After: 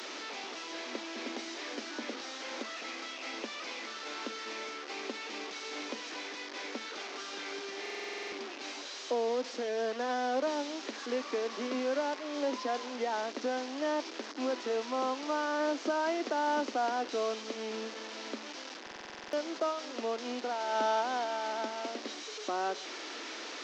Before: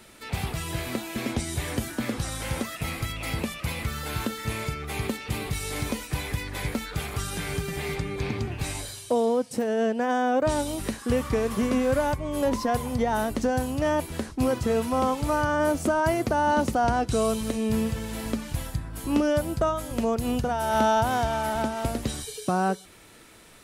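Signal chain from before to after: delta modulation 32 kbps, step -27.5 dBFS; steep high-pass 260 Hz 48 dB/oct; stuck buffer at 7.81/18.82, samples 2048, times 10; gain -7.5 dB

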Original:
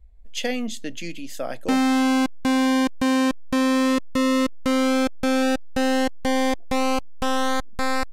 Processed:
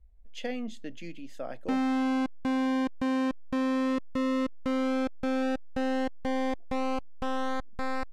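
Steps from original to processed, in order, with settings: LPF 1900 Hz 6 dB/oct; gain -7.5 dB

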